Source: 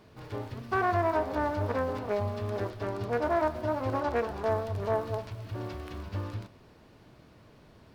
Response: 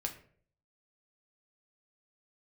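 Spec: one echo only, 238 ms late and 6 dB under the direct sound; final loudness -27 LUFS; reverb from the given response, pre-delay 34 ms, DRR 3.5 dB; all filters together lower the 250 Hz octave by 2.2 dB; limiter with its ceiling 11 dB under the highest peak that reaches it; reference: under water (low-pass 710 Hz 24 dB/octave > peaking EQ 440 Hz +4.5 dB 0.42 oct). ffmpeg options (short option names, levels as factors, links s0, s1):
-filter_complex "[0:a]equalizer=f=250:t=o:g=-4,alimiter=level_in=1.41:limit=0.0631:level=0:latency=1,volume=0.708,aecho=1:1:238:0.501,asplit=2[s0][s1];[1:a]atrim=start_sample=2205,adelay=34[s2];[s1][s2]afir=irnorm=-1:irlink=0,volume=0.631[s3];[s0][s3]amix=inputs=2:normalize=0,lowpass=f=710:w=0.5412,lowpass=f=710:w=1.3066,equalizer=f=440:t=o:w=0.42:g=4.5,volume=2.51"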